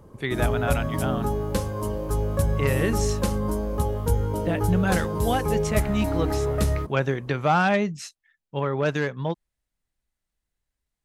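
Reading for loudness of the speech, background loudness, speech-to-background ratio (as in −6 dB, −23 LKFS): −27.0 LKFS, −26.5 LKFS, −0.5 dB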